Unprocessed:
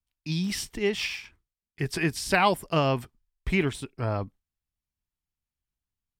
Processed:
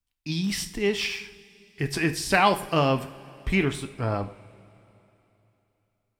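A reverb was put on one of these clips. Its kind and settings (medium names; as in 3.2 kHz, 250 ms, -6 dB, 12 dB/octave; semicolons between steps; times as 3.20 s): two-slope reverb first 0.47 s, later 3.3 s, from -18 dB, DRR 8 dB; trim +1.5 dB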